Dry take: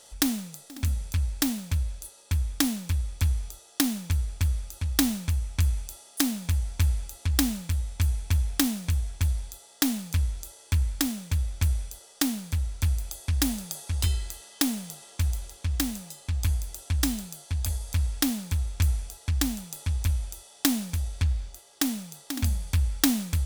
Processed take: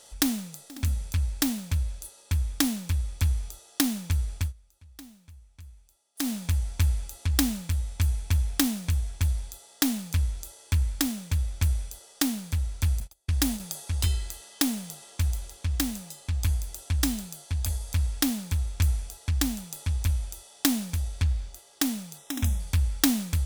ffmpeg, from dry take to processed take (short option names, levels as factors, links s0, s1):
-filter_complex "[0:a]asettb=1/sr,asplit=3[s0][s1][s2];[s0]atrim=end=13.004[s3];[s1]atrim=start=13:end=13.6,asetpts=PTS-STARTPTS,afade=t=in:d=0.004:c=qsin,afade=t=out:st=0.596:d=0.004:c=qsin,agate=range=0.0355:threshold=0.02:ratio=16:release=100:detection=peak[s4];[s2]atrim=start=13.596[s5];[s3][s4]acrossfade=d=0.004:c1=hsin:c2=qsin[s6];[s6][s5]acrossfade=d=0.004:c1=qsin:c2=hsin,asettb=1/sr,asplit=3[s7][s8][s9];[s7]atrim=end=22.184[s10];[s8]atrim=start=22.18:end=22.6,asetpts=PTS-STARTPTS,afade=t=in:d=0.004:c=qsin,afade=t=out:st=0.416:d=0.004:c=qsin,asuperstop=centerf=4500:order=8:qfactor=4.8[s11];[s9]atrim=start=22.596[s12];[s10][s11]acrossfade=d=0.004:c1=hsin:c2=qsin[s13];[s13][s12]acrossfade=d=0.004:c1=qsin:c2=hsin,asplit=3[s14][s15][s16];[s14]atrim=end=4.53,asetpts=PTS-STARTPTS,afade=t=out:st=4.33:d=0.2:c=qsin:silence=0.0707946[s17];[s15]atrim=start=4.53:end=6.15,asetpts=PTS-STARTPTS,volume=0.0708[s18];[s16]atrim=start=6.15,asetpts=PTS-STARTPTS,afade=t=in:d=0.2:c=qsin:silence=0.0707946[s19];[s17][s18][s19]concat=n=3:v=0:a=1"